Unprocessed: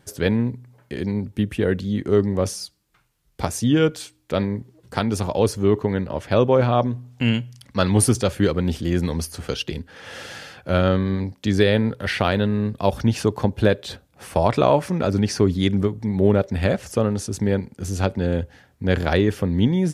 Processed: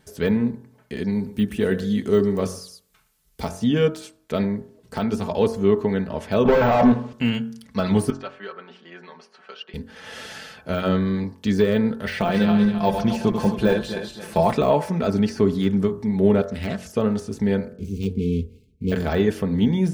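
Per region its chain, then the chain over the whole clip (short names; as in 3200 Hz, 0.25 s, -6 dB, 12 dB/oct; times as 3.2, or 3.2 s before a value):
1.12–3.49 high shelf 4900 Hz +9.5 dB + echo 0.117 s -17 dB
6.45–7.13 air absorption 62 m + overdrive pedal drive 30 dB, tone 2400 Hz, clips at -5 dBFS
8.1–9.74 HPF 990 Hz + tape spacing loss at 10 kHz 41 dB + comb 5.3 ms, depth 57%
12.12–14.53 regenerating reverse delay 0.133 s, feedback 58%, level -7.5 dB + comb 5.8 ms, depth 47%
16.49–16.96 HPF 62 Hz 6 dB/oct + bell 540 Hz -8.5 dB 2.7 oct + Doppler distortion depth 0.48 ms
17.72–18.92 median filter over 25 samples + brick-wall FIR band-stop 480–2100 Hz + low shelf 71 Hz +8.5 dB
whole clip: de-esser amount 85%; comb 4.6 ms, depth 50%; de-hum 45.37 Hz, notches 39; gain -1 dB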